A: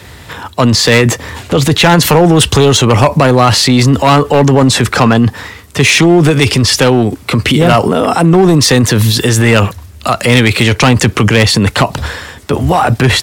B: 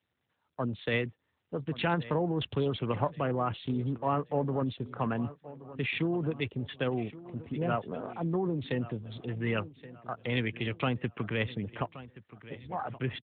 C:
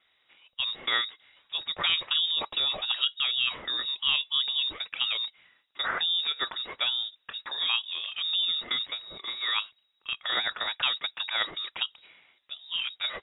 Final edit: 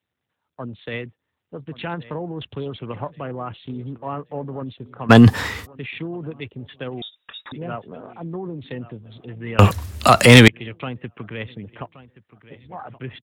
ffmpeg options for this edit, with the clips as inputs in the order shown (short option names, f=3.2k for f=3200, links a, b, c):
-filter_complex "[0:a]asplit=2[a][b];[1:a]asplit=4[c][d][e][f];[c]atrim=end=5.11[g];[a]atrim=start=5.09:end=5.67[h];[d]atrim=start=5.65:end=7.022[i];[2:a]atrim=start=7.018:end=7.522[j];[e]atrim=start=7.518:end=9.592[k];[b]atrim=start=9.588:end=10.482[l];[f]atrim=start=10.478[m];[g][h]acrossfade=d=0.02:c1=tri:c2=tri[n];[n][i]acrossfade=d=0.02:c1=tri:c2=tri[o];[o][j]acrossfade=d=0.004:c1=hsin:c2=hsin[p];[p][k]acrossfade=d=0.004:c1=hsin:c2=hsin[q];[q][l]acrossfade=d=0.004:c1=hsin:c2=hsin[r];[r][m]acrossfade=d=0.004:c1=hsin:c2=hsin"